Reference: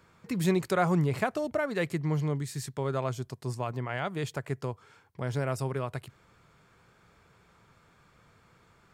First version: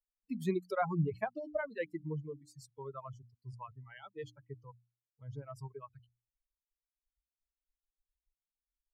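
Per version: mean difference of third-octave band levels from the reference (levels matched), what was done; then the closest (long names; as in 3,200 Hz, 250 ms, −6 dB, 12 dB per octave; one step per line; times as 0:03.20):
14.5 dB: spectral dynamics exaggerated over time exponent 3
reverb reduction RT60 0.58 s
high-shelf EQ 2,700 Hz −11.5 dB
mains-hum notches 60/120/180/240/300 Hz
level −1 dB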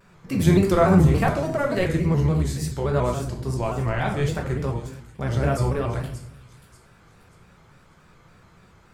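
5.5 dB: sub-octave generator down 1 octave, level −4 dB
on a send: delay with a high-pass on its return 585 ms, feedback 35%, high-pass 5,200 Hz, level −7.5 dB
on the sum: rectangular room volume 170 cubic metres, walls mixed, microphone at 1 metre
pitch modulation by a square or saw wave square 3.5 Hz, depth 100 cents
level +3 dB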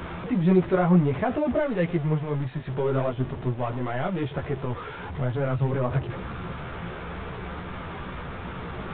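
10.5 dB: converter with a step at zero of −30.5 dBFS
de-essing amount 95%
multi-voice chorus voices 6, 1.4 Hz, delay 14 ms, depth 3 ms
downsampling to 8,000 Hz
level +6.5 dB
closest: second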